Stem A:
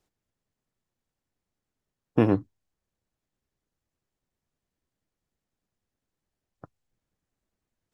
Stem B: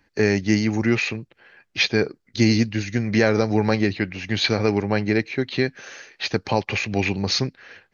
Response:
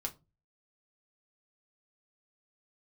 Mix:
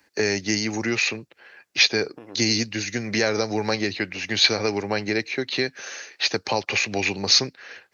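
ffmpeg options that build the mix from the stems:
-filter_complex "[0:a]acompressor=threshold=-28dB:ratio=6,volume=2dB[a];[1:a]bandreject=f=3.2k:w=26,acrossover=split=120|3000[b][c][d];[c]acompressor=threshold=-24dB:ratio=2[e];[b][e][d]amix=inputs=3:normalize=0,volume=2.5dB,asplit=2[f][g];[g]apad=whole_len=350117[h];[a][h]sidechaincompress=threshold=-33dB:ratio=5:attack=40:release=619[i];[i][f]amix=inputs=2:normalize=0,highpass=56,bass=f=250:g=-11,treble=f=4k:g=6"

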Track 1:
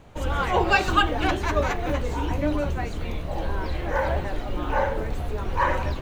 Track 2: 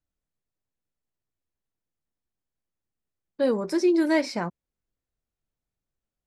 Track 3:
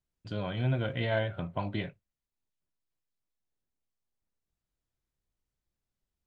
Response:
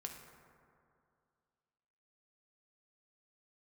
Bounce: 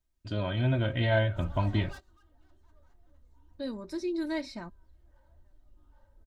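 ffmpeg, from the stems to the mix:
-filter_complex "[0:a]lowshelf=f=130:g=-8,asoftclip=type=tanh:threshold=-23.5dB,equalizer=f=2.4k:t=o:w=0.42:g=-13.5,adelay=1200,volume=-19.5dB[a];[1:a]equalizer=f=3.9k:w=6.8:g=13.5,adelay=200,volume=-14dB[b];[2:a]volume=1.5dB,asplit=2[c][d];[d]apad=whole_len=318219[e];[a][e]sidechaingate=range=-22dB:threshold=-48dB:ratio=16:detection=peak[f];[f][b][c]amix=inputs=3:normalize=0,lowshelf=f=70:g=6.5,aecho=1:1:3.2:0.56,asubboost=boost=4:cutoff=200"

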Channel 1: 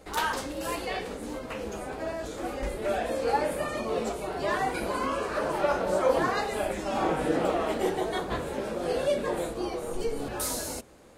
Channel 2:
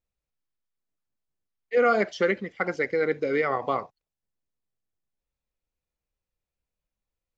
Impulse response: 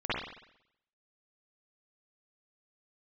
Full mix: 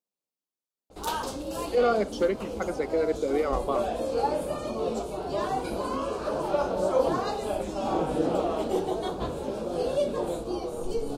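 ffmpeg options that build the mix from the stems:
-filter_complex "[0:a]adynamicequalizer=threshold=0.00224:dfrequency=7000:dqfactor=0.7:tfrequency=7000:tqfactor=0.7:attack=5:release=100:ratio=0.375:range=3:mode=cutabove:tftype=highshelf,adelay=900,volume=1dB[a];[1:a]highpass=f=200:w=0.5412,highpass=f=200:w=1.3066,volume=-0.5dB[b];[a][b]amix=inputs=2:normalize=0,equalizer=f=1.9k:w=1.8:g=-15"

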